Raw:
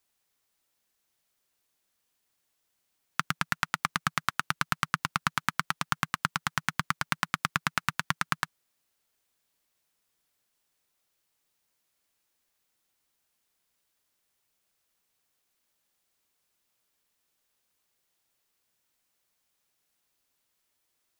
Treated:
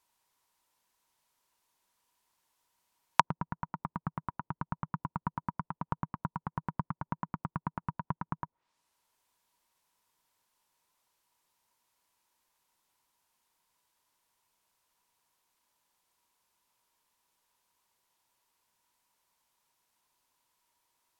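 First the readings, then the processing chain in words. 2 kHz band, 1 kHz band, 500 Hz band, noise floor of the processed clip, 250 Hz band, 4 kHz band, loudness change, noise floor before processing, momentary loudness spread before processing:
-15.5 dB, -3.5 dB, 0.0 dB, under -85 dBFS, 0.0 dB, -17.0 dB, -6.5 dB, -78 dBFS, 3 LU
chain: low-pass that closes with the level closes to 490 Hz, closed at -32 dBFS; peaking EQ 960 Hz +15 dB 0.3 oct

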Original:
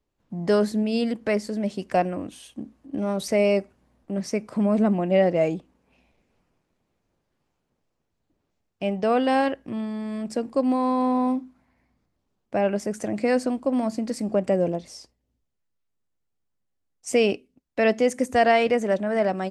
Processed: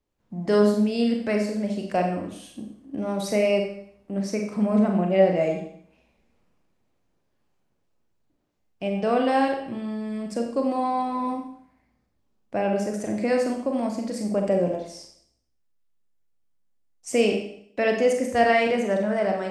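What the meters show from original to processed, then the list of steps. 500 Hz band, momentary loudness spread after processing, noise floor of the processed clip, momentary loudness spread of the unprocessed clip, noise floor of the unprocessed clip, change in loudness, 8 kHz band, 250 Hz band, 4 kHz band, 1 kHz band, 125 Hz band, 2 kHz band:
0.0 dB, 13 LU, -71 dBFS, 12 LU, -77 dBFS, -0.5 dB, -0.5 dB, -0.5 dB, -0.5 dB, 0.0 dB, +0.5 dB, 0.0 dB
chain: Schroeder reverb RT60 0.62 s, combs from 30 ms, DRR 2 dB; trim -2.5 dB

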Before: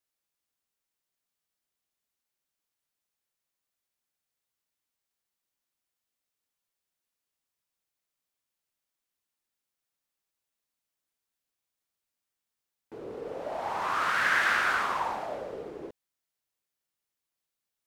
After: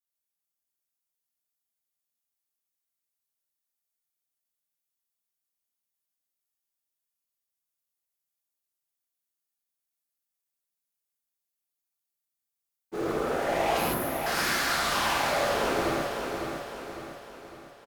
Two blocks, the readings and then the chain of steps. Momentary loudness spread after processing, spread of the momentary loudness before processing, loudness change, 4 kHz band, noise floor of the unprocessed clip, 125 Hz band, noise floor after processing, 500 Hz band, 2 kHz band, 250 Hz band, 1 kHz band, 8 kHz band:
16 LU, 19 LU, +0.5 dB, +8.0 dB, under -85 dBFS, +13.0 dB, under -85 dBFS, +9.0 dB, -2.0 dB, +12.5 dB, +2.0 dB, +11.5 dB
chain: time-frequency box 13.78–14.26 s, 370–10000 Hz -26 dB; treble shelf 6.7 kHz +12 dB; expander -39 dBFS; reverse; compression 12:1, threshold -42 dBFS, peak gain reduction 21 dB; reverse; sine folder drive 13 dB, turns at -31.5 dBFS; on a send: feedback delay 554 ms, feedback 47%, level -5.5 dB; on the sum: gated-style reverb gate 180 ms flat, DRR -5.5 dB

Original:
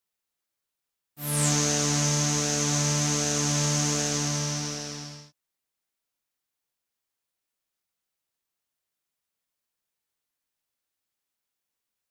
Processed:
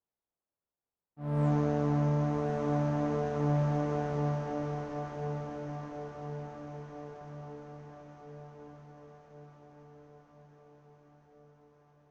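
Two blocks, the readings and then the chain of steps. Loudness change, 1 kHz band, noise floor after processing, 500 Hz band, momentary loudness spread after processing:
-8.0 dB, -1.0 dB, under -85 dBFS, +1.5 dB, 20 LU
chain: Chebyshev low-pass 780 Hz, order 2; on a send: echo that smears into a reverb 1179 ms, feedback 61%, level -5 dB

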